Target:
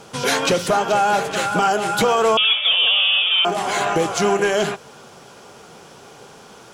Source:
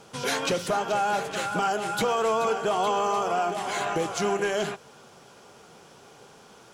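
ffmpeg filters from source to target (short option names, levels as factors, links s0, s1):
-filter_complex "[0:a]asettb=1/sr,asplit=3[s0][s1][s2];[s0]atrim=end=2.374[s3];[s1]atrim=start=2.37:end=3.45,asetpts=PTS-STARTPTS,afade=t=in:d=0.004:c=qsin,afade=t=out:st=1.076:d=0.004:c=qsin,lowpass=f=3200:t=q:w=0.5098,lowpass=f=3200:t=q:w=0.6013,lowpass=f=3200:t=q:w=0.9,lowpass=f=3200:t=q:w=2.563,afreqshift=-3800[s4];[s2]atrim=start=3.446[s5];[s3][s4]acrossfade=d=0.004:c1=hsin:c2=qsin[s6];[s6][s5]acrossfade=d=0.004:c1=qsin:c2=hsin,volume=2.51"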